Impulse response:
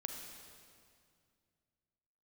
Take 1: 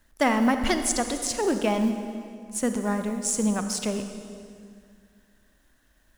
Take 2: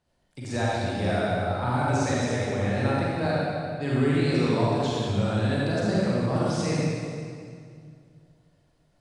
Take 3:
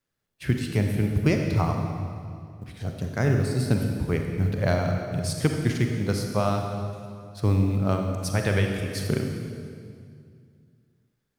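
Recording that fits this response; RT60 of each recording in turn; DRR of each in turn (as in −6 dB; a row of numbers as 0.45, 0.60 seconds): 3; 2.2, 2.2, 2.2 seconds; 7.5, −7.0, 3.0 decibels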